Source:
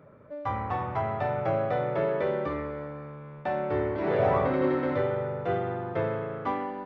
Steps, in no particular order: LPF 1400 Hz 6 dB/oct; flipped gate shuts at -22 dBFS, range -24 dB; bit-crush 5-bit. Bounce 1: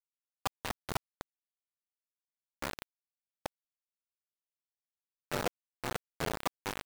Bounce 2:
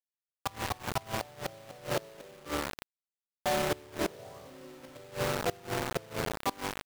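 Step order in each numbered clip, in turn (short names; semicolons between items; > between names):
LPF > flipped gate > bit-crush; LPF > bit-crush > flipped gate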